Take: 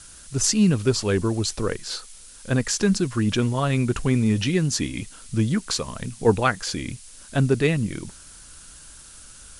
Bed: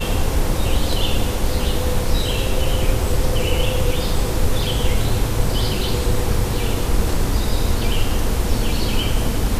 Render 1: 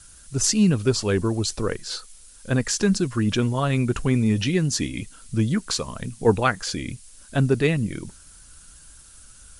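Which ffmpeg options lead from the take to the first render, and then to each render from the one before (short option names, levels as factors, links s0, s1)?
-af "afftdn=nr=6:nf=-46"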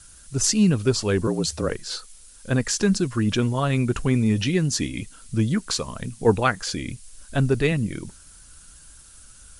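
-filter_complex "[0:a]asettb=1/sr,asplit=3[s0][s1][s2];[s0]atrim=end=1.274[s3];[s1]atrim=start=1.27:end=1.7,asetpts=PTS-STARTPTS,afade=t=in:d=0.004:c=qsin,afade=t=out:st=0.426:d=0.004:c=qsin,afreqshift=66[s4];[s2]atrim=start=1.696[s5];[s3][s4]acrossfade=d=0.004:c1=hsin:c2=qsin[s6];[s6][s5]acrossfade=d=0.004:c1=qsin:c2=hsin,asettb=1/sr,asplit=3[s7][s8][s9];[s7]atrim=end=6.844[s10];[s8]atrim=start=6.84:end=7.72,asetpts=PTS-STARTPTS,afade=t=in:d=0.004:c=qsin,afade=t=out:st=0.876:d=0.004:c=qsin,asubboost=boost=10.5:cutoff=86[s11];[s9]atrim=start=7.716[s12];[s10][s11]acrossfade=d=0.004:c1=hsin:c2=qsin[s13];[s13][s12]acrossfade=d=0.004:c1=qsin:c2=hsin"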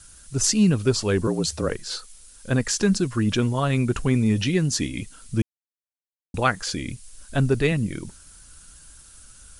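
-filter_complex "[0:a]asplit=3[s0][s1][s2];[s0]atrim=end=5.42,asetpts=PTS-STARTPTS,afade=t=out:st=5.416:d=0.004:c=hsin[s3];[s1]atrim=start=5.42:end=6.34,asetpts=PTS-STARTPTS,volume=0[s4];[s2]atrim=start=6.34,asetpts=PTS-STARTPTS,afade=t=in:d=0.004:c=hsin[s5];[s3][s4][s5]concat=n=3:v=0:a=1"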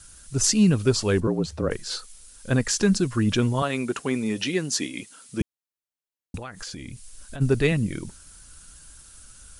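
-filter_complex "[0:a]asettb=1/sr,asplit=3[s0][s1][s2];[s0]atrim=end=1.204[s3];[s1]atrim=start=1.2:end=1.71,asetpts=PTS-STARTPTS,afade=t=in:d=0.004:c=qsin,afade=t=out:st=0.506:d=0.004:c=qsin,lowpass=f=1400:p=1[s4];[s2]atrim=start=1.706[s5];[s3][s4]acrossfade=d=0.004:c1=hsin:c2=qsin[s6];[s6][s5]acrossfade=d=0.004:c1=qsin:c2=hsin,asettb=1/sr,asplit=3[s7][s8][s9];[s7]atrim=end=3.624[s10];[s8]atrim=start=3.62:end=5.41,asetpts=PTS-STARTPTS,afade=t=in:d=0.004:c=qsin,afade=t=out:st=1.786:d=0.004:c=qsin,highpass=280[s11];[s9]atrim=start=5.406[s12];[s10][s11]acrossfade=d=0.004:c1=hsin:c2=qsin[s13];[s13][s12]acrossfade=d=0.004:c1=qsin:c2=hsin,asplit=3[s14][s15][s16];[s14]afade=t=out:st=6.36:d=0.02[s17];[s15]acompressor=threshold=0.0251:ratio=20:attack=3.2:release=140:knee=1:detection=peak,afade=t=in:st=6.36:d=0.02,afade=t=out:st=7.4:d=0.02[s18];[s16]afade=t=in:st=7.4:d=0.02[s19];[s17][s18][s19]amix=inputs=3:normalize=0"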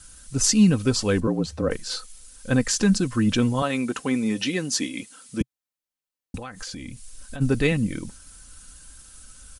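-af "equalizer=f=130:t=o:w=0.52:g=4,aecho=1:1:3.9:0.45"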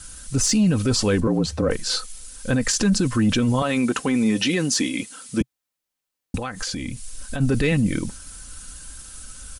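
-af "acontrast=83,alimiter=limit=0.237:level=0:latency=1:release=28"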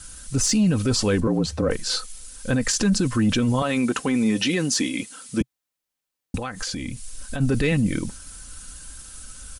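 -af "volume=0.891"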